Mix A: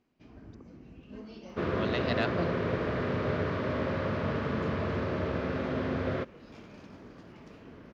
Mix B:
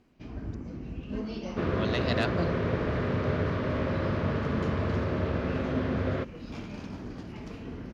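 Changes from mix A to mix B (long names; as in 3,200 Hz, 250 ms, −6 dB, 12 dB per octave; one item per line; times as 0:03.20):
speech: remove high-frequency loss of the air 120 metres
first sound +9.0 dB
master: add low-shelf EQ 110 Hz +8.5 dB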